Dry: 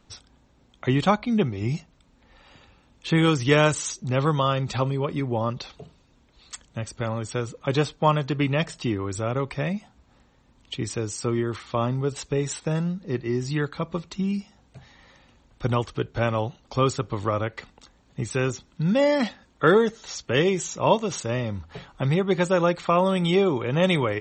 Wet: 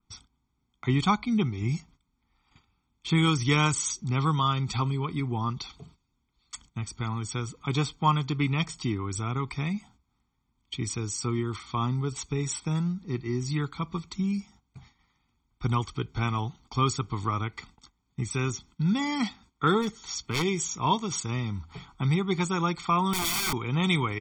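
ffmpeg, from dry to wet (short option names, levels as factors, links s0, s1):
-filter_complex "[0:a]asplit=3[s0][s1][s2];[s0]afade=t=out:st=19.81:d=0.02[s3];[s1]aeval=exprs='0.15*(abs(mod(val(0)/0.15+3,4)-2)-1)':c=same,afade=t=in:st=19.81:d=0.02,afade=t=out:st=20.43:d=0.02[s4];[s2]afade=t=in:st=20.43:d=0.02[s5];[s3][s4][s5]amix=inputs=3:normalize=0,asettb=1/sr,asplit=3[s6][s7][s8];[s6]atrim=end=23.134[s9];[s7]atrim=start=23.13:end=23.53,asetpts=PTS-STARTPTS,afade=t=in:d=0.004:c=qsin,afade=t=out:st=0.396:d=0.004:c=qsin,aeval=exprs='(mod(11.9*val(0)+1,2)-1)/11.9':c=same[s10];[s8]atrim=start=23.526[s11];[s9][s10]acrossfade=d=0.004:c1=hsin:c2=qsin[s12];[s12][s11]acrossfade=d=0.004:c1=qsin:c2=hsin,agate=range=0.2:threshold=0.00316:ratio=16:detection=peak,aecho=1:1:0.9:0.95,adynamicequalizer=threshold=0.0126:dfrequency=3300:dqfactor=0.7:tfrequency=3300:tqfactor=0.7:attack=5:release=100:ratio=0.375:range=2:mode=boostabove:tftype=highshelf,volume=0.473"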